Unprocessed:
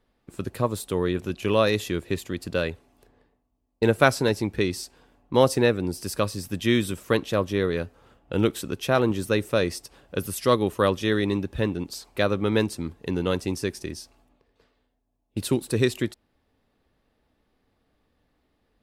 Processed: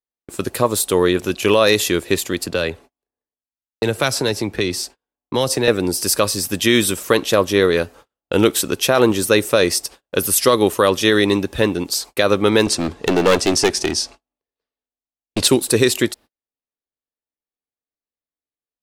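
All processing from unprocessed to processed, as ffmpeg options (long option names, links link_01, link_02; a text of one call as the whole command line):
ffmpeg -i in.wav -filter_complex "[0:a]asettb=1/sr,asplit=3[link_01][link_02][link_03];[link_01]atrim=end=2.464[link_04];[link_02]atrim=start=2.46:end=5.68,asetpts=PTS-STARTPTS,afade=type=in:duration=0.004:curve=qsin,afade=type=out:start_time=3.216:duration=0.004:curve=qsin,highshelf=frequency=4500:gain=-9,acrossover=split=140|3000[link_05][link_06][link_07];[link_06]acompressor=threshold=-26dB:ratio=5:attack=3.2:release=140:knee=2.83:detection=peak[link_08];[link_05][link_08][link_07]amix=inputs=3:normalize=0[link_09];[link_03]atrim=start=5.676[link_10];[link_04][link_09]acrossfade=duration=0.004:curve1=hsin:curve2=qsin[link_11];[link_11][link_10]acrossfade=duration=0.004:curve1=qsin:curve2=hsin,asettb=1/sr,asplit=3[link_12][link_13][link_14];[link_12]atrim=end=12.664[link_15];[link_13]atrim=start=12.66:end=15.48,asetpts=PTS-STARTPTS,afade=type=in:duration=0.004:curve=qsin,afade=type=out:start_time=2.816:duration=0.004:curve=qsin,lowpass=6700,acontrast=45,aeval=exprs='clip(val(0),-1,0.0631)':channel_layout=same[link_16];[link_14]atrim=start=15.476[link_17];[link_15][link_16]acrossfade=duration=0.004:curve1=hsin:curve2=qsin[link_18];[link_18][link_17]acrossfade=duration=0.004:curve1=qsin:curve2=hsin,agate=range=-40dB:threshold=-48dB:ratio=16:detection=peak,bass=frequency=250:gain=-9,treble=frequency=4000:gain=6,alimiter=level_in=12.5dB:limit=-1dB:release=50:level=0:latency=1,volume=-1dB" out.wav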